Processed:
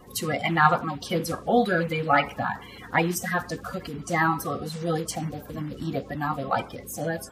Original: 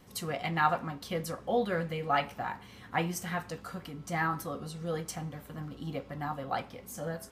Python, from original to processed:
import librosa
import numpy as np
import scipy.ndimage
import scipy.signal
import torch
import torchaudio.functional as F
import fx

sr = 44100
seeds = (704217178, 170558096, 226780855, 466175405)

y = fx.spec_quant(x, sr, step_db=30)
y = F.gain(torch.from_numpy(y), 8.5).numpy()